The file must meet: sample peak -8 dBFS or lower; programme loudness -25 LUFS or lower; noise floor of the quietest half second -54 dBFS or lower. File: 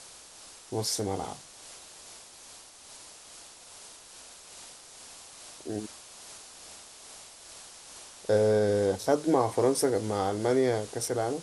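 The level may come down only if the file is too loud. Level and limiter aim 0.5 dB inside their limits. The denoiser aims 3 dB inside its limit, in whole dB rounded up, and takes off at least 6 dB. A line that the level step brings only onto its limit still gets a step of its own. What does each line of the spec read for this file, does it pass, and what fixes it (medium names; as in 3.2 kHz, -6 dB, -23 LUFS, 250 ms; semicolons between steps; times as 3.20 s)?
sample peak -11.5 dBFS: pass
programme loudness -28.0 LUFS: pass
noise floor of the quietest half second -50 dBFS: fail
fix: noise reduction 7 dB, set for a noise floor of -50 dBFS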